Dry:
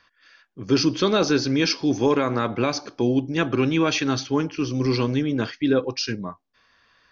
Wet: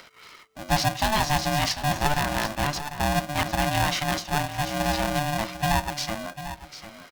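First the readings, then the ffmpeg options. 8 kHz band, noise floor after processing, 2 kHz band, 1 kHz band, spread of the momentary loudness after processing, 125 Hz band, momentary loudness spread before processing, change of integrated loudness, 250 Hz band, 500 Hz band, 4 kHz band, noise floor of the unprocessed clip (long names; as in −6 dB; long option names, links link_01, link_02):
can't be measured, −50 dBFS, +2.0 dB, +5.5 dB, 13 LU, −1.0 dB, 6 LU, −3.0 dB, −9.5 dB, −7.5 dB, −0.5 dB, −65 dBFS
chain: -af "acompressor=mode=upward:threshold=-34dB:ratio=2.5,aecho=1:1:747|1494:0.251|0.0377,aeval=exprs='val(0)*sgn(sin(2*PI*440*n/s))':channel_layout=same,volume=-3.5dB"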